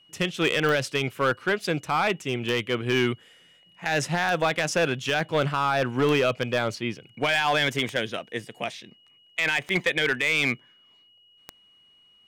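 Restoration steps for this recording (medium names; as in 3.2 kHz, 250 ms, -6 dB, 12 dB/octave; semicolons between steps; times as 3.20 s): clip repair -16 dBFS; de-click; band-stop 2.9 kHz, Q 30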